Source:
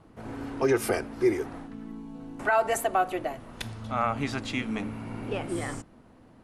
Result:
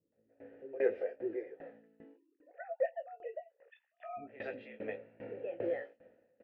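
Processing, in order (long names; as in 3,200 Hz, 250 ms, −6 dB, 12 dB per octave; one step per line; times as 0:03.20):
0:02.04–0:04.17: three sine waves on the formant tracks
dynamic equaliser 560 Hz, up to +5 dB, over −37 dBFS, Q 0.79
automatic gain control gain up to 14 dB
formant filter e
high-frequency loss of the air 350 metres
double-tracking delay 18 ms −7.5 dB
three-band delay without the direct sound lows, mids, highs 120/150 ms, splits 340/2,900 Hz
tremolo with a ramp in dB decaying 2.5 Hz, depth 21 dB
level −1 dB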